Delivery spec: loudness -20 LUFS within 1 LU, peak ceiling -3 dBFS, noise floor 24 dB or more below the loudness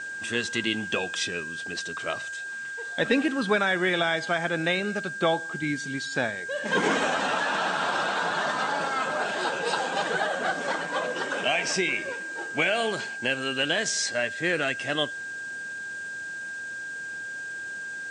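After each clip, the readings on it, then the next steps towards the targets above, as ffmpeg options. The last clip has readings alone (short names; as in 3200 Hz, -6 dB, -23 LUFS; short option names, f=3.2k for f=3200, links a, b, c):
steady tone 1600 Hz; tone level -33 dBFS; noise floor -36 dBFS; noise floor target -52 dBFS; loudness -27.5 LUFS; peak -10.5 dBFS; loudness target -20.0 LUFS
-> -af "bandreject=f=1.6k:w=30"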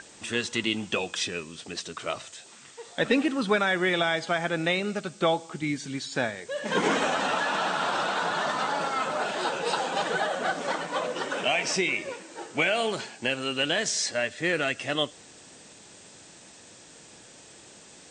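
steady tone none; noise floor -51 dBFS; noise floor target -52 dBFS
-> -af "afftdn=nr=6:nf=-51"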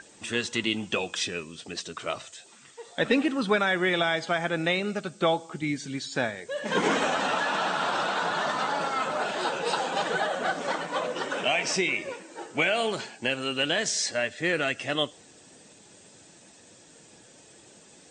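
noise floor -54 dBFS; loudness -27.5 LUFS; peak -11.0 dBFS; loudness target -20.0 LUFS
-> -af "volume=7.5dB"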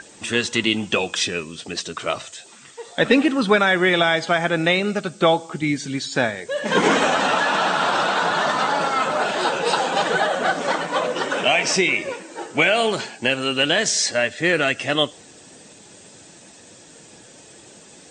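loudness -20.0 LUFS; peak -3.5 dBFS; noise floor -46 dBFS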